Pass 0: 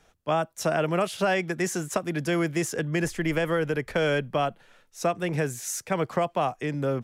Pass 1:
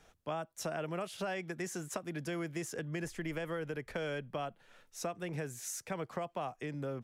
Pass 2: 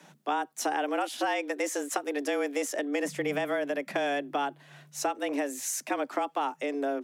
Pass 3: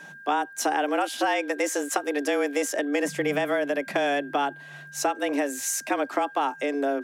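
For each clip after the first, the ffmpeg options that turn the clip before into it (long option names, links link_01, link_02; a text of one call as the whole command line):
ffmpeg -i in.wav -af "acompressor=threshold=-42dB:ratio=2,volume=-2dB" out.wav
ffmpeg -i in.wav -af "afreqshift=140,volume=8.5dB" out.wav
ffmpeg -i in.wav -af "aeval=exprs='val(0)+0.00447*sin(2*PI*1600*n/s)':channel_layout=same,volume=4.5dB" out.wav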